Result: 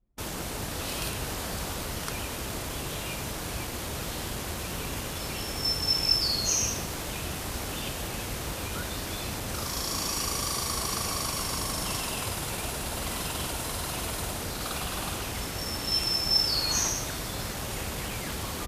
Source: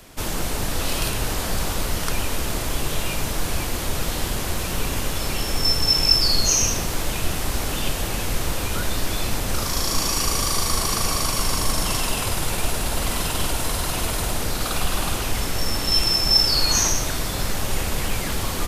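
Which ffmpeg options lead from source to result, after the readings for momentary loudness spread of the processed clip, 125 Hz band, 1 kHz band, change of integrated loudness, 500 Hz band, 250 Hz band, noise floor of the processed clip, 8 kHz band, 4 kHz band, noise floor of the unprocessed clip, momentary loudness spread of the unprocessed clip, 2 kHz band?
10 LU, -8.0 dB, -7.0 dB, -7.0 dB, -7.0 dB, -7.0 dB, -35 dBFS, -7.0 dB, -7.0 dB, -27 dBFS, 9 LU, -7.0 dB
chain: -af "highpass=54,anlmdn=39.8,volume=0.447"

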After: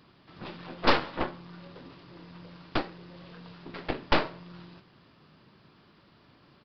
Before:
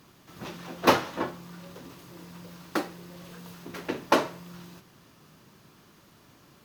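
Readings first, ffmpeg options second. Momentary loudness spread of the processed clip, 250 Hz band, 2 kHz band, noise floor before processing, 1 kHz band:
22 LU, -3.0 dB, 0.0 dB, -58 dBFS, -3.0 dB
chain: -af "aeval=exprs='0.596*(cos(1*acos(clip(val(0)/0.596,-1,1)))-cos(1*PI/2))+0.0422*(cos(3*acos(clip(val(0)/0.596,-1,1)))-cos(3*PI/2))+0.133*(cos(8*acos(clip(val(0)/0.596,-1,1)))-cos(8*PI/2))':c=same,aresample=11025,asoftclip=type=tanh:threshold=0.282,aresample=44100"

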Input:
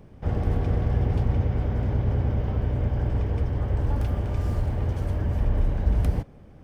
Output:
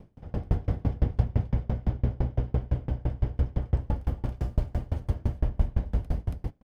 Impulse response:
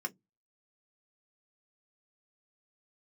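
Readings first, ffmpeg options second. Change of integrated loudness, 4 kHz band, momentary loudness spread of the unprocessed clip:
-4.5 dB, no reading, 3 LU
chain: -filter_complex "[0:a]aecho=1:1:278:0.668,asplit=2[s0][s1];[1:a]atrim=start_sample=2205[s2];[s1][s2]afir=irnorm=-1:irlink=0,volume=0.224[s3];[s0][s3]amix=inputs=2:normalize=0,aeval=exprs='val(0)*pow(10,-32*if(lt(mod(5.9*n/s,1),2*abs(5.9)/1000),1-mod(5.9*n/s,1)/(2*abs(5.9)/1000),(mod(5.9*n/s,1)-2*abs(5.9)/1000)/(1-2*abs(5.9)/1000))/20)':c=same,volume=1.19"

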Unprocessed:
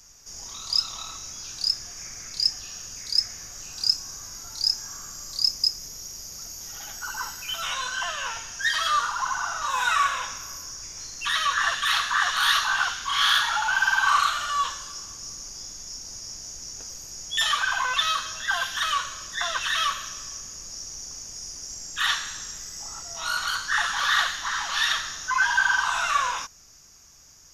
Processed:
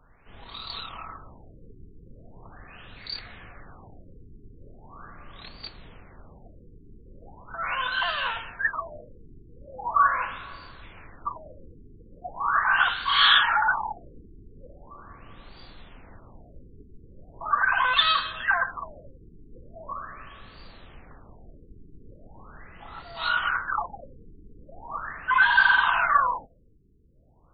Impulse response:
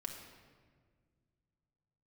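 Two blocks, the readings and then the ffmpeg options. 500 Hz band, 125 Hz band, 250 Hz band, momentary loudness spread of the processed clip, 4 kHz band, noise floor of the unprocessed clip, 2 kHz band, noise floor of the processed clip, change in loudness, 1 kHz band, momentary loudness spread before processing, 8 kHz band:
+2.0 dB, +3.0 dB, no reading, 23 LU, -4.5 dB, -41 dBFS, -0.5 dB, -53 dBFS, +1.5 dB, 0.0 dB, 15 LU, under -40 dB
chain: -filter_complex "[0:a]acrusher=bits=5:mode=log:mix=0:aa=0.000001,asplit=2[s0][s1];[1:a]atrim=start_sample=2205[s2];[s1][s2]afir=irnorm=-1:irlink=0,volume=0.15[s3];[s0][s3]amix=inputs=2:normalize=0,afftfilt=real='re*lt(b*sr/1024,450*pow(4700/450,0.5+0.5*sin(2*PI*0.4*pts/sr)))':imag='im*lt(b*sr/1024,450*pow(4700/450,0.5+0.5*sin(2*PI*0.4*pts/sr)))':win_size=1024:overlap=0.75,volume=1.33"

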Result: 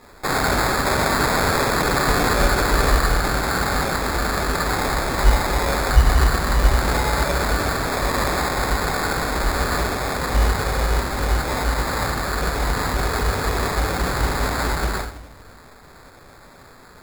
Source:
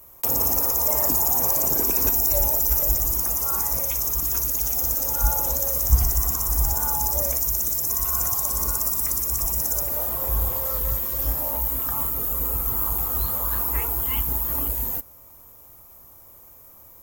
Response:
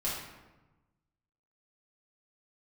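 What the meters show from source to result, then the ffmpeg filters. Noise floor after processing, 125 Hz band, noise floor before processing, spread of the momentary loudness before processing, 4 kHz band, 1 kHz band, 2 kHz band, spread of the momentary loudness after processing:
-46 dBFS, +7.5 dB, -48 dBFS, 5 LU, +11.0 dB, +12.5 dB, +20.5 dB, 4 LU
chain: -filter_complex "[1:a]atrim=start_sample=2205[s0];[0:a][s0]afir=irnorm=-1:irlink=0,acrusher=samples=15:mix=1:aa=0.000001,volume=0.794"

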